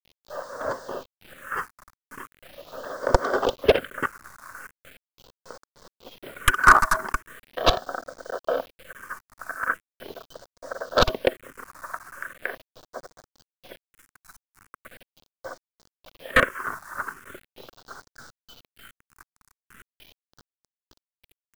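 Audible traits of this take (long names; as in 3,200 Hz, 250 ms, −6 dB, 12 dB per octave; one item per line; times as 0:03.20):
chopped level 3.3 Hz, depth 65%, duty 40%
a quantiser's noise floor 8 bits, dither none
phaser sweep stages 4, 0.4 Hz, lowest notch 500–2,700 Hz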